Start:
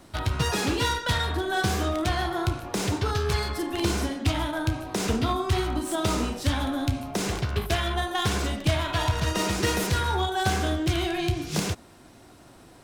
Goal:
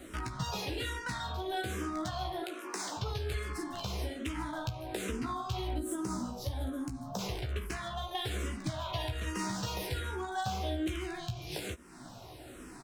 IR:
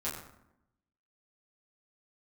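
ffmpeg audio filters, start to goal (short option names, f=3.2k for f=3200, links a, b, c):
-filter_complex "[0:a]asettb=1/sr,asplit=3[a][b][c];[a]atrim=end=2.424[d];[b]atrim=start=2.42:end=2.97,asetpts=PTS-STARTPTS,afade=t=in:d=0.004:c=qsin,afade=t=out:st=0.546:d=0.004:c=qsin,highpass=f=330:w=0.5412,highpass=f=330:w=1.3066[e];[c]atrim=start=2.966[f];[d][e]acrossfade=d=0.004:c1=hsin:c2=qsin[g];[g][f]acrossfade=d=0.004:c1=qsin:c2=hsin,asettb=1/sr,asplit=3[h][i][j];[h]atrim=end=5.784[k];[i]atrim=start=5.78:end=7.19,asetpts=PTS-STARTPTS,afade=t=in:d=0.004:c=qsin,afade=t=out:st=1.406:d=0.004:c=qsin,equalizer=f=2.5k:w=1.1:g=-14[l];[j]atrim=start=7.186[m];[k][l]acrossfade=d=0.004:c1=hsin:c2=qsin[n];[n][m]acrossfade=d=0.004:c1=qsin:c2=hsin,acompressor=threshold=-40dB:ratio=3,asplit=2[o][p];[p]adelay=16,volume=-6dB[q];[o][q]amix=inputs=2:normalize=0,asplit=2[r][s];[s]afreqshift=-1.2[t];[r][t]amix=inputs=2:normalize=1,volume=4dB"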